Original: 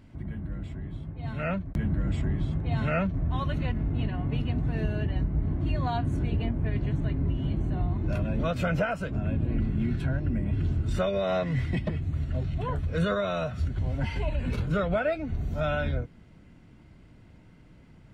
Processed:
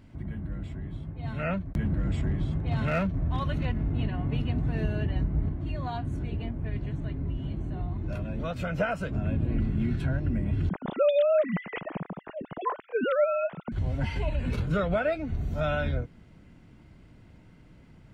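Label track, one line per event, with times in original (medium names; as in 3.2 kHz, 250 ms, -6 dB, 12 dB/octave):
1.850000	3.650000	overload inside the chain gain 21 dB
5.490000	8.800000	flange 1.6 Hz, delay 0.2 ms, depth 3.4 ms, regen +89%
10.690000	13.720000	formants replaced by sine waves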